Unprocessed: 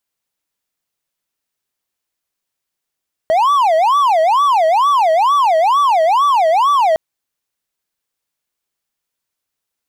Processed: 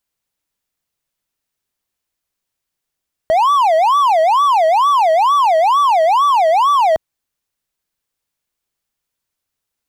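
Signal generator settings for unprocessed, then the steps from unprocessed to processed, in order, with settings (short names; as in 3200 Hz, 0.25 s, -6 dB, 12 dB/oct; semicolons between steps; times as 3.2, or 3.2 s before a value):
siren wail 633–1160 Hz 2.2/s triangle -7.5 dBFS 3.66 s
low shelf 130 Hz +8 dB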